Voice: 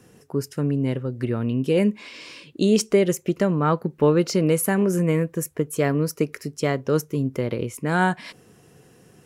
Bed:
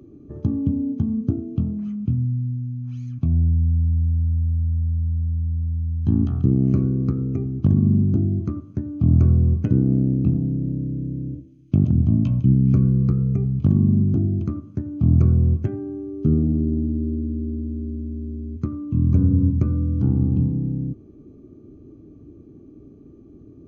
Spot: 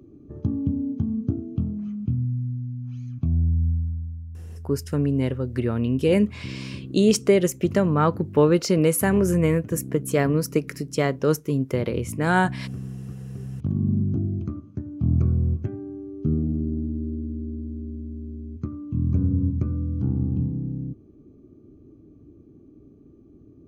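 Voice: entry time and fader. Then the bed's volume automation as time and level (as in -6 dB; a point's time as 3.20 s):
4.35 s, +0.5 dB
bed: 3.69 s -3 dB
4.26 s -17 dB
13.17 s -17 dB
13.91 s -5 dB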